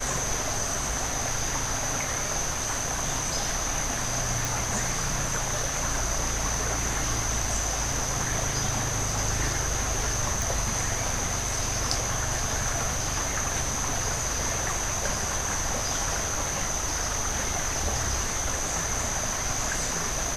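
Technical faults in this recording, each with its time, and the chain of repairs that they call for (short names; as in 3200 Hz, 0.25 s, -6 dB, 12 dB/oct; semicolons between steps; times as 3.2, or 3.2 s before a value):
4.45 pop
10.42 pop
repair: de-click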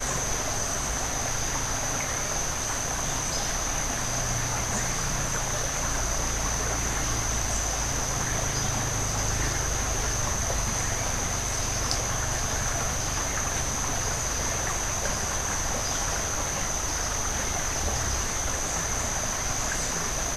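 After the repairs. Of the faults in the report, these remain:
none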